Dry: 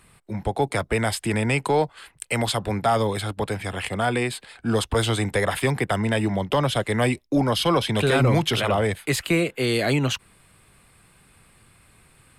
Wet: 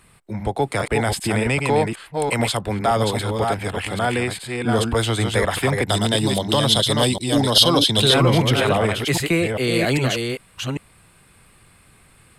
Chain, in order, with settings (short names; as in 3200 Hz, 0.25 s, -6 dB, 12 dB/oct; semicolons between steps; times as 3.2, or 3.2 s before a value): reverse delay 0.399 s, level -4 dB; 5.88–8.14 resonant high shelf 2900 Hz +8 dB, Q 3; gain +1.5 dB